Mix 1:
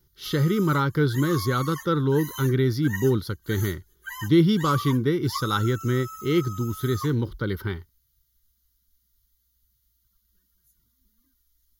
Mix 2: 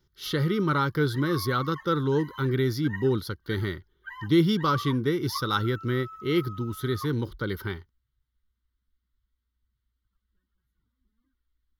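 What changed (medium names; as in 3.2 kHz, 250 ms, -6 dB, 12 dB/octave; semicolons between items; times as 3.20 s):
background: add distance through air 470 m; master: add bass shelf 340 Hz -5 dB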